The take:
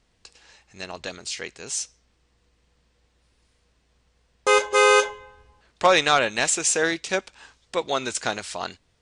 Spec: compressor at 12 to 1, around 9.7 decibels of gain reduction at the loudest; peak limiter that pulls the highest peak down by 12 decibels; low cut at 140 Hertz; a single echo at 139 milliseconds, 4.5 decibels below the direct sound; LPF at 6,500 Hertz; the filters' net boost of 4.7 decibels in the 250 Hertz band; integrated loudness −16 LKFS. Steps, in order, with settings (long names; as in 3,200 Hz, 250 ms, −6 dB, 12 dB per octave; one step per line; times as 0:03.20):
high-pass filter 140 Hz
low-pass filter 6,500 Hz
parametric band 250 Hz +7.5 dB
downward compressor 12 to 1, threshold −21 dBFS
brickwall limiter −18.5 dBFS
single-tap delay 139 ms −4.5 dB
level +14 dB